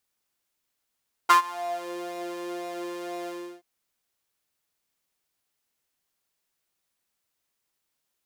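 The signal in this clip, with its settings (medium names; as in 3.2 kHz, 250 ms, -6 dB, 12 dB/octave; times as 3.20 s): synth patch with pulse-width modulation F4, sub -6.5 dB, filter highpass, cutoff 420 Hz, Q 5.9, filter envelope 1.5 oct, filter decay 0.68 s, filter sustain 10%, attack 14 ms, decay 0.11 s, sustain -22 dB, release 0.34 s, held 1.99 s, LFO 2 Hz, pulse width 38%, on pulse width 16%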